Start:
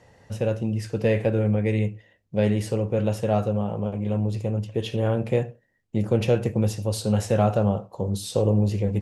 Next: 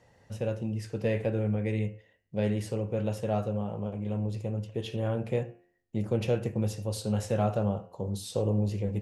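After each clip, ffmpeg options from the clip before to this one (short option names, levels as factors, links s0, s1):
-af "bandreject=f=88.29:t=h:w=4,bandreject=f=176.58:t=h:w=4,bandreject=f=264.87:t=h:w=4,bandreject=f=353.16:t=h:w=4,bandreject=f=441.45:t=h:w=4,bandreject=f=529.74:t=h:w=4,bandreject=f=618.03:t=h:w=4,bandreject=f=706.32:t=h:w=4,bandreject=f=794.61:t=h:w=4,bandreject=f=882.9:t=h:w=4,bandreject=f=971.19:t=h:w=4,bandreject=f=1059.48:t=h:w=4,bandreject=f=1147.77:t=h:w=4,bandreject=f=1236.06:t=h:w=4,bandreject=f=1324.35:t=h:w=4,bandreject=f=1412.64:t=h:w=4,bandreject=f=1500.93:t=h:w=4,bandreject=f=1589.22:t=h:w=4,bandreject=f=1677.51:t=h:w=4,bandreject=f=1765.8:t=h:w=4,bandreject=f=1854.09:t=h:w=4,bandreject=f=1942.38:t=h:w=4,bandreject=f=2030.67:t=h:w=4,bandreject=f=2118.96:t=h:w=4,bandreject=f=2207.25:t=h:w=4,bandreject=f=2295.54:t=h:w=4,bandreject=f=2383.83:t=h:w=4,bandreject=f=2472.12:t=h:w=4,bandreject=f=2560.41:t=h:w=4,bandreject=f=2648.7:t=h:w=4,bandreject=f=2736.99:t=h:w=4,bandreject=f=2825.28:t=h:w=4,bandreject=f=2913.57:t=h:w=4,bandreject=f=3001.86:t=h:w=4,volume=0.473"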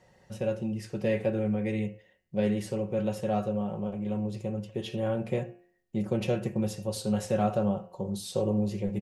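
-af "aecho=1:1:5.4:0.53"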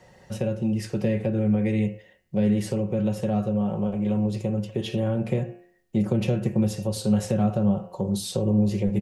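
-filter_complex "[0:a]acrossover=split=290[s0][s1];[s1]acompressor=threshold=0.0141:ratio=5[s2];[s0][s2]amix=inputs=2:normalize=0,volume=2.51"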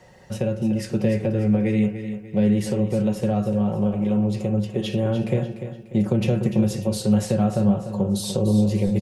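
-af "aecho=1:1:295|590|885|1180:0.299|0.116|0.0454|0.0177,volume=1.33"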